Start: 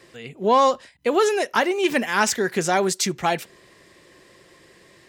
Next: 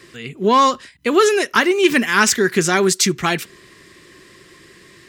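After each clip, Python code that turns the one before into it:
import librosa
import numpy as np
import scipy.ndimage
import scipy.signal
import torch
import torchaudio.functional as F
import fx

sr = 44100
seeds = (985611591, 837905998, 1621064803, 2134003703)

y = fx.band_shelf(x, sr, hz=670.0, db=-9.5, octaves=1.1)
y = y * 10.0 ** (7.0 / 20.0)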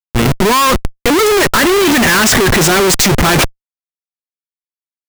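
y = fx.schmitt(x, sr, flips_db=-29.5)
y = y * 10.0 ** (8.5 / 20.0)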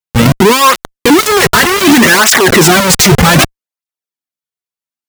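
y = fx.flanger_cancel(x, sr, hz=0.65, depth_ms=3.8)
y = y * 10.0 ** (7.0 / 20.0)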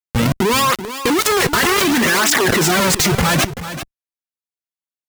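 y = fx.level_steps(x, sr, step_db=17)
y = y + 10.0 ** (-12.0 / 20.0) * np.pad(y, (int(385 * sr / 1000.0), 0))[:len(y)]
y = y * 10.0 ** (2.0 / 20.0)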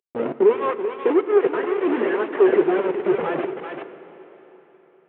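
y = fx.cvsd(x, sr, bps=16000)
y = fx.highpass_res(y, sr, hz=400.0, q=4.4)
y = fx.rev_plate(y, sr, seeds[0], rt60_s=3.9, hf_ratio=0.95, predelay_ms=0, drr_db=11.5)
y = y * 10.0 ** (-6.0 / 20.0)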